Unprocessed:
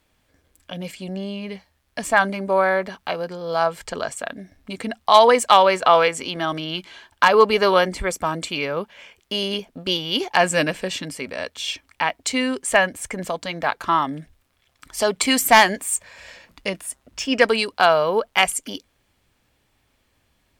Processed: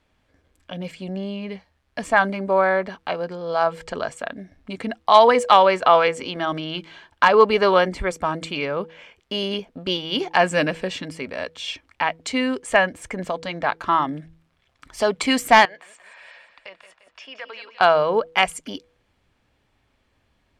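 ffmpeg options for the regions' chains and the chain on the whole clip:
ffmpeg -i in.wav -filter_complex "[0:a]asettb=1/sr,asplit=3[link_01][link_02][link_03];[link_01]atrim=end=15.654[link_04];[link_02]atrim=start=15.65:end=17.81,asetpts=PTS-STARTPTS,afade=type=in:duration=0.004:curve=qsin,afade=type=out:start_time=2.156:duration=0.004:curve=qsin,acrossover=split=570 4700:gain=0.0631 1 0.0631[link_05][link_06][link_07];[link_05][link_06][link_07]amix=inputs=3:normalize=0,acompressor=threshold=-39dB:ratio=2.5:attack=3.2:release=140:knee=1:detection=peak,aecho=1:1:174|348|522|696|870:0.282|0.138|0.0677|0.0332|0.0162,atrim=end_sample=95256[link_08];[link_03]atrim=start=17.806[link_09];[link_04][link_08]acrossfade=duration=0.004:curve1=hsin:curve2=qsin[link_10];[link_10][link_09]acrossfade=duration=0.004:curve1=qsin:curve2=hsin,aemphasis=mode=reproduction:type=50fm,bandreject=frequency=162.9:width_type=h:width=4,bandreject=frequency=325.8:width_type=h:width=4,bandreject=frequency=488.7:width_type=h:width=4" out.wav

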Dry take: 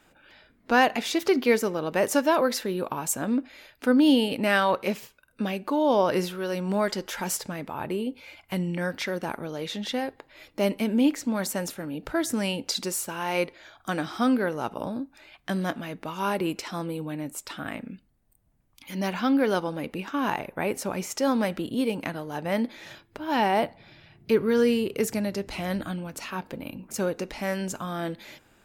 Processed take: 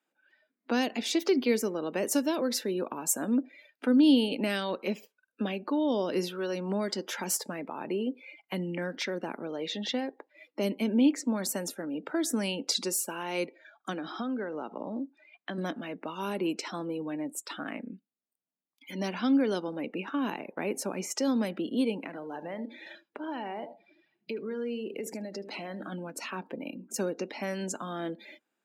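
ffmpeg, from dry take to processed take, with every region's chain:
ffmpeg -i in.wav -filter_complex "[0:a]asettb=1/sr,asplit=3[link_01][link_02][link_03];[link_01]atrim=end=13.934[link_04];[link_02]atrim=start=13.93:end=15.58,asetpts=PTS-STARTPTS,afade=type=in:duration=0.004:curve=qsin,afade=type=out:start_time=1.646:duration=0.004:curve=qsin,acompressor=threshold=-28dB:ratio=5:attack=3.2:release=140:knee=1:detection=peak,highpass=110,lowpass=6100[link_05];[link_03]atrim=start=15.576[link_06];[link_04][link_05]acrossfade=duration=0.004:curve1=hsin:curve2=qsin[link_07];[link_07][link_06]acrossfade=duration=0.004:curve1=qsin:curve2=hsin,asettb=1/sr,asplit=3[link_08][link_09][link_10];[link_08]atrim=end=21.974[link_11];[link_09]atrim=start=21.97:end=25.92,asetpts=PTS-STARTPTS,afade=type=in:duration=0.004:curve=qsin,afade=type=out:start_time=3.946:duration=0.004:curve=qsin,acompressor=threshold=-33dB:ratio=4:attack=3.2:release=140:knee=1:detection=peak,aecho=1:1:76:0.266,atrim=end_sample=174195[link_12];[link_10]atrim=start=25.916[link_13];[link_11][link_12]acrossfade=duration=0.004:curve1=hsin:curve2=qsin[link_14];[link_14][link_13]acrossfade=duration=0.004:curve1=qsin:curve2=hsin,highpass=frequency=210:width=0.5412,highpass=frequency=210:width=1.3066,afftdn=noise_reduction=22:noise_floor=-44,acrossover=split=410|3000[link_15][link_16][link_17];[link_16]acompressor=threshold=-36dB:ratio=6[link_18];[link_15][link_18][link_17]amix=inputs=3:normalize=0" out.wav

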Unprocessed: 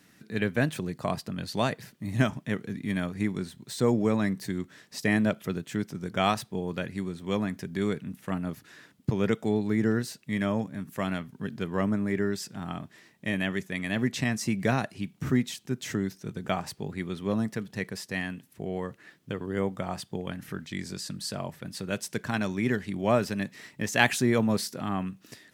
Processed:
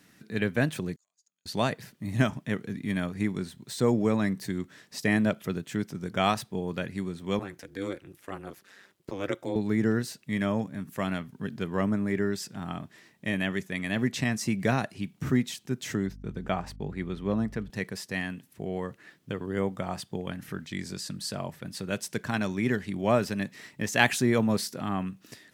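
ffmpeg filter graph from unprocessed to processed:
ffmpeg -i in.wav -filter_complex "[0:a]asettb=1/sr,asplit=3[link_01][link_02][link_03];[link_01]atrim=end=0.964[link_04];[link_02]atrim=start=0.96:end=1.46,asetpts=PTS-STARTPTS,afade=type=in:duration=0.004:curve=qsin,afade=type=out:start_time=0.496:duration=0.004:curve=qsin,acompressor=threshold=-47dB:ratio=3:attack=3.2:release=140:knee=1:detection=peak,bandpass=frequency=6700:width_type=q:width=15[link_05];[link_03]atrim=start=1.456[link_06];[link_04][link_05]acrossfade=duration=0.004:curve1=hsin:curve2=qsin[link_07];[link_07][link_06]acrossfade=duration=0.004:curve1=qsin:curve2=hsin,asettb=1/sr,asplit=3[link_08][link_09][link_10];[link_08]atrim=end=7.394[link_11];[link_09]atrim=start=7.39:end=9.56,asetpts=PTS-STARTPTS,afade=type=in:duration=0.004:curve=qsin,afade=type=out:start_time=2.166:duration=0.004:curve=qsin,highpass=frequency=270:width=0.5412,highpass=frequency=270:width=1.3066,aeval=exprs='val(0)*sin(2*PI*97*n/s)':channel_layout=same[link_12];[link_10]atrim=start=9.556[link_13];[link_11][link_12]acrossfade=duration=0.004:curve1=hsin:curve2=qsin[link_14];[link_14][link_13]acrossfade=duration=0.004:curve1=qsin:curve2=hsin,asettb=1/sr,asplit=3[link_15][link_16][link_17];[link_15]atrim=end=16.064[link_18];[link_16]atrim=start=16.06:end=17.7,asetpts=PTS-STARTPTS,afade=type=in:duration=0.004:curve=qsin,afade=type=out:start_time=1.636:duration=0.004:curve=qsin,agate=range=-26dB:threshold=-50dB:ratio=16:release=100:detection=peak,highshelf=frequency=4400:gain=-11,aeval=exprs='val(0)+0.00631*(sin(2*PI*50*n/s)+sin(2*PI*2*50*n/s)/2+sin(2*PI*3*50*n/s)/3+sin(2*PI*4*50*n/s)/4+sin(2*PI*5*50*n/s)/5)':channel_layout=same[link_19];[link_17]atrim=start=17.696[link_20];[link_18][link_19]acrossfade=duration=0.004:curve1=hsin:curve2=qsin[link_21];[link_21][link_20]acrossfade=duration=0.004:curve1=qsin:curve2=hsin" out.wav

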